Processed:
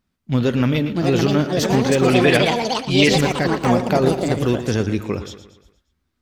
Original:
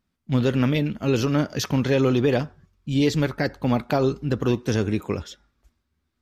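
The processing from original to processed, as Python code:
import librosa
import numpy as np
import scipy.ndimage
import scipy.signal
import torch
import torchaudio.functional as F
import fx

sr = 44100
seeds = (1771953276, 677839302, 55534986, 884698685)

y = fx.peak_eq(x, sr, hz=2200.0, db=13.0, octaves=1.4, at=(2.08, 3.15))
y = fx.echo_pitch(y, sr, ms=722, semitones=5, count=2, db_per_echo=-3.0)
y = fx.echo_feedback(y, sr, ms=117, feedback_pct=47, wet_db=-12.5)
y = y * 10.0 ** (2.5 / 20.0)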